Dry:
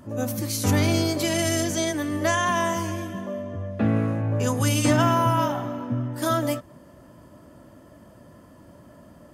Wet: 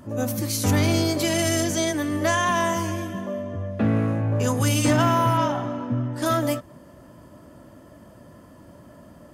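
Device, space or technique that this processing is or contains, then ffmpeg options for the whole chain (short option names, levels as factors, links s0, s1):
parallel distortion: -filter_complex "[0:a]asplit=2[s0][s1];[s1]asoftclip=type=hard:threshold=0.0944,volume=0.631[s2];[s0][s2]amix=inputs=2:normalize=0,asettb=1/sr,asplit=3[s3][s4][s5];[s3]atrim=end=5.374[s6];[s4]atrim=start=5.37:end=6.26,asetpts=PTS-STARTPTS,afade=t=in:d=0.004:c=qsin,afade=t=out:st=0.886:d=0.004:c=qsin,lowpass=8200[s7];[s5]atrim=start=6.256[s8];[s6][s7]acrossfade=d=0.004:c1=hsin:c2=qsin[s9];[s9][s8]acrossfade=d=0.004:c1=qsin:c2=hsin,volume=0.75"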